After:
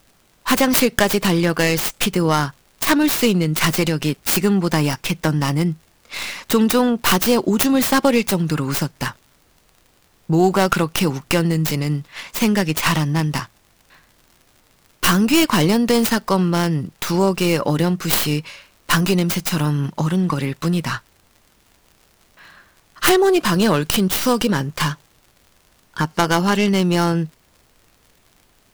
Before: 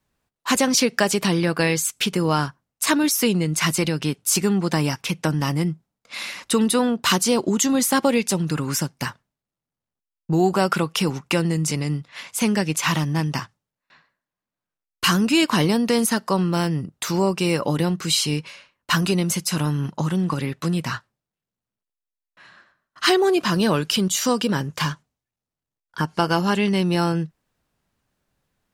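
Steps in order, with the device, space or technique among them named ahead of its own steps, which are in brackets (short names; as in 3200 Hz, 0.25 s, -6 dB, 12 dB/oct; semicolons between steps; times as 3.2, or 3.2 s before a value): record under a worn stylus (tracing distortion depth 0.46 ms; crackle; pink noise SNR 38 dB); gain +3.5 dB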